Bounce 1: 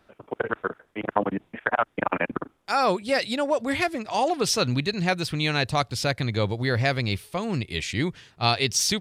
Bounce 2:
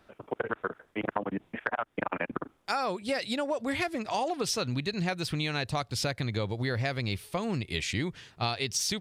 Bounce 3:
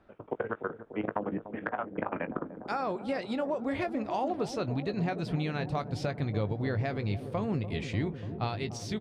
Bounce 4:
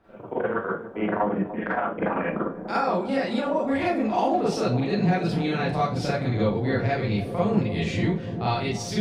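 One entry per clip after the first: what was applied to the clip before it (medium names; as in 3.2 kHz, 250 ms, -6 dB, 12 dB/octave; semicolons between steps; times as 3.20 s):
compression, threshold -27 dBFS, peak gain reduction 11 dB
low-pass 1.1 kHz 6 dB/octave; doubling 19 ms -12 dB; feedback echo behind a low-pass 294 ms, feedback 77%, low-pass 680 Hz, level -10 dB
Schroeder reverb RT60 0.3 s, combs from 33 ms, DRR -7.5 dB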